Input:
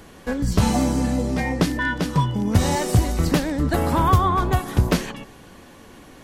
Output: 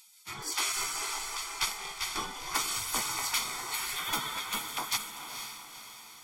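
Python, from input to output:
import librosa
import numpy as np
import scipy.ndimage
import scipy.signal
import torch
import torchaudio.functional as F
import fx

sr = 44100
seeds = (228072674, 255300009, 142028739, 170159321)

p1 = fx.spec_gate(x, sr, threshold_db=-25, keep='weak')
p2 = p1 + 0.74 * np.pad(p1, (int(0.9 * sr / 1000.0), 0))[:len(p1)]
y = p2 + fx.echo_diffused(p2, sr, ms=479, feedback_pct=48, wet_db=-7.5, dry=0)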